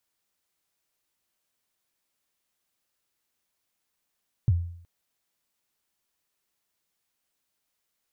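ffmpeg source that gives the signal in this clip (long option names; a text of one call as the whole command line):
ffmpeg -f lavfi -i "aevalsrc='0.178*pow(10,-3*t/0.62)*sin(2*PI*(130*0.039/log(86/130)*(exp(log(86/130)*min(t,0.039)/0.039)-1)+86*max(t-0.039,0)))':duration=0.37:sample_rate=44100" out.wav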